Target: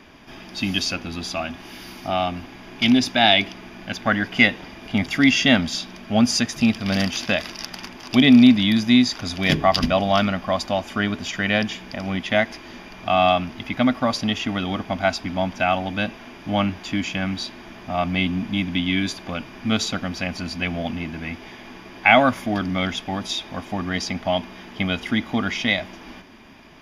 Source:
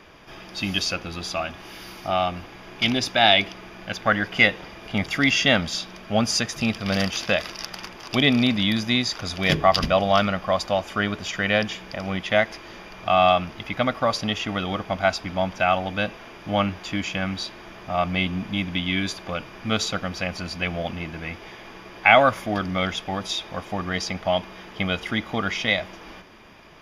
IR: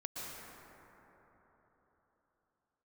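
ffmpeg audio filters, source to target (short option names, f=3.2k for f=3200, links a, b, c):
-af "equalizer=f=250:t=o:w=0.33:g=10,equalizer=f=500:t=o:w=0.33:g=-6,equalizer=f=1.25k:t=o:w=0.33:g=-4,volume=1dB"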